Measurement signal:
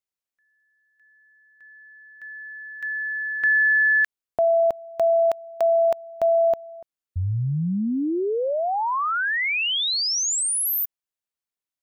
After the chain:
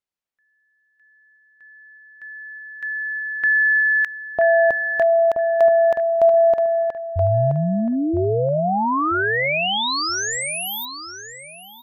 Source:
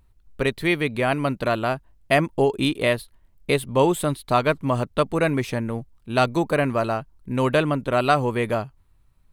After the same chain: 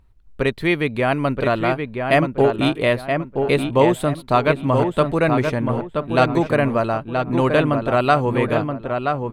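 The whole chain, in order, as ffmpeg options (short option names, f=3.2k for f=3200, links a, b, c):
-filter_complex "[0:a]highshelf=f=5.6k:g=-10.5,asplit=2[a][b];[b]adelay=976,lowpass=f=2.6k:p=1,volume=-5dB,asplit=2[c][d];[d]adelay=976,lowpass=f=2.6k:p=1,volume=0.31,asplit=2[e][f];[f]adelay=976,lowpass=f=2.6k:p=1,volume=0.31,asplit=2[g][h];[h]adelay=976,lowpass=f=2.6k:p=1,volume=0.31[i];[c][e][g][i]amix=inputs=4:normalize=0[j];[a][j]amix=inputs=2:normalize=0,volume=3dB"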